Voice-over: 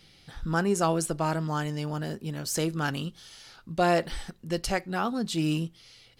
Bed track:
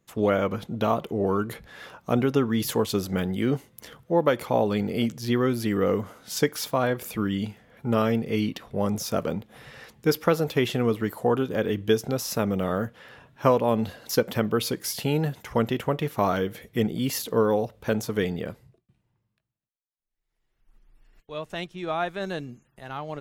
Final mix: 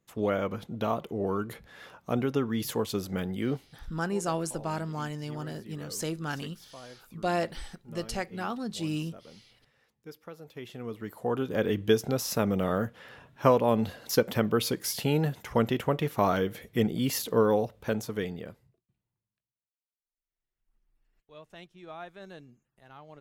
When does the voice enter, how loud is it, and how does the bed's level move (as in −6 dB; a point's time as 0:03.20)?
3.45 s, −5.0 dB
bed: 0:03.52 −5.5 dB
0:03.88 −23.5 dB
0:10.34 −23.5 dB
0:11.61 −1.5 dB
0:17.57 −1.5 dB
0:19.21 −15 dB